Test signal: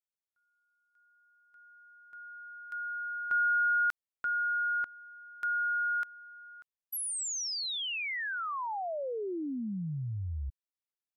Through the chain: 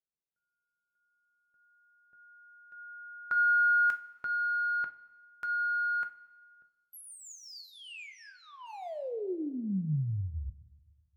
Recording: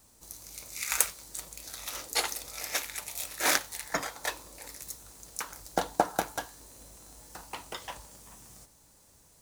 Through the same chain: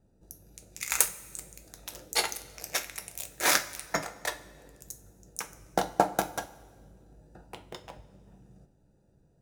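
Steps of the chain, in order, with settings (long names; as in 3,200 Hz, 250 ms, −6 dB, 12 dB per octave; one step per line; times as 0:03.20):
adaptive Wiener filter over 41 samples
coupled-rooms reverb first 0.27 s, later 1.5 s, from −16 dB, DRR 6.5 dB
level +1.5 dB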